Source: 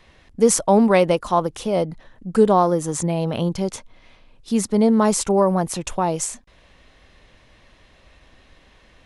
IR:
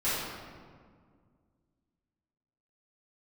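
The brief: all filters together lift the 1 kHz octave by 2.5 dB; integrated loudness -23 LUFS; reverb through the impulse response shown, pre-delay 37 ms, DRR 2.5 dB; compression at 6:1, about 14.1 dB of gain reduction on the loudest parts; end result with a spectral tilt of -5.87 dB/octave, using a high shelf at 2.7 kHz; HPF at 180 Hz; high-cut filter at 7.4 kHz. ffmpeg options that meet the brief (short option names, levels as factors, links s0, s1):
-filter_complex "[0:a]highpass=180,lowpass=7400,equalizer=f=1000:t=o:g=4,highshelf=f=2700:g=-6,acompressor=threshold=0.0562:ratio=6,asplit=2[s0][s1];[1:a]atrim=start_sample=2205,adelay=37[s2];[s1][s2]afir=irnorm=-1:irlink=0,volume=0.224[s3];[s0][s3]amix=inputs=2:normalize=0,volume=1.78"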